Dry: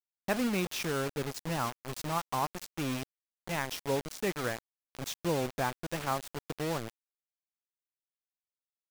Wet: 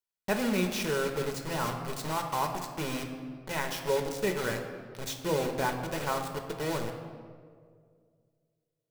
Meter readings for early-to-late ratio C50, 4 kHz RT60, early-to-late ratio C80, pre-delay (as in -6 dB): 6.0 dB, 1.1 s, 8.0 dB, 5 ms